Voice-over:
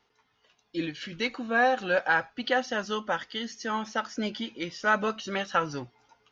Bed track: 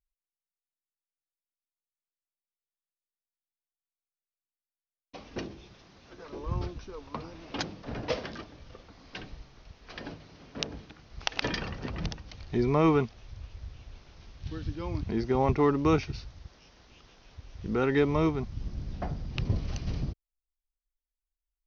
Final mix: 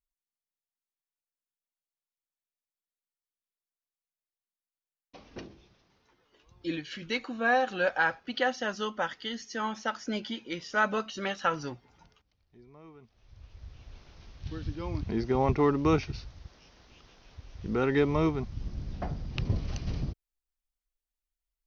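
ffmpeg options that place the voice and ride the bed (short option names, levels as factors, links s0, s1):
-filter_complex "[0:a]adelay=5900,volume=0.794[s0];[1:a]volume=14.1,afade=t=out:st=5.31:d=0.94:silence=0.0668344,afade=t=in:st=13.01:d=1:silence=0.0375837[s1];[s0][s1]amix=inputs=2:normalize=0"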